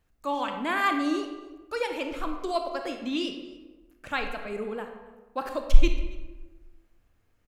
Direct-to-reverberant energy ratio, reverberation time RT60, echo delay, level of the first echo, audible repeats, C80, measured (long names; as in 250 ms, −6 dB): 5.0 dB, 1.2 s, 276 ms, −22.5 dB, 1, 8.5 dB